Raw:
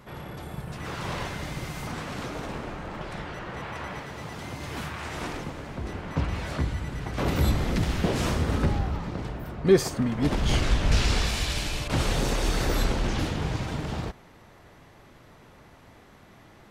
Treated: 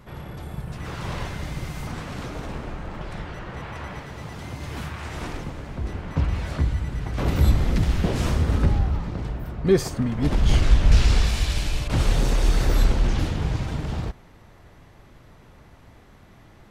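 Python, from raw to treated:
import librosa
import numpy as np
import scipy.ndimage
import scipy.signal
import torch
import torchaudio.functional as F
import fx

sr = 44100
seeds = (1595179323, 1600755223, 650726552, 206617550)

y = fx.low_shelf(x, sr, hz=110.0, db=10.5)
y = F.gain(torch.from_numpy(y), -1.0).numpy()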